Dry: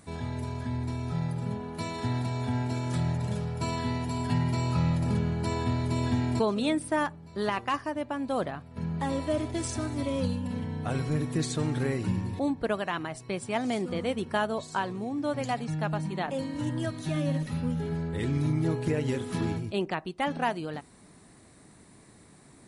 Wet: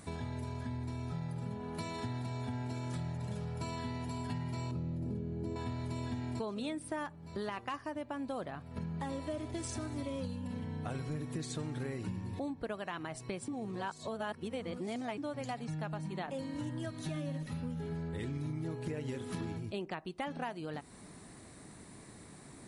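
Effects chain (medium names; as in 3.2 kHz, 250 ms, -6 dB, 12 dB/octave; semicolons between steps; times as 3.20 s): 4.71–5.56 s: FFT filter 170 Hz 0 dB, 350 Hz +7 dB, 1 kHz -12 dB; 13.48–15.18 s: reverse; compression 4:1, threshold -40 dBFS, peak gain reduction 15 dB; trim +2 dB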